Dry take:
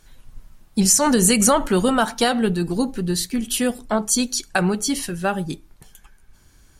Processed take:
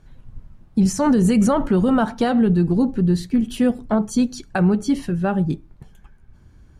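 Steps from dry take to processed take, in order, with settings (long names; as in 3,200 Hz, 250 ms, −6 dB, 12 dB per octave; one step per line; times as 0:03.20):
low-pass filter 1,300 Hz 6 dB per octave
parametric band 110 Hz +9 dB 2.8 octaves
brickwall limiter −9.5 dBFS, peak gain reduction 5.5 dB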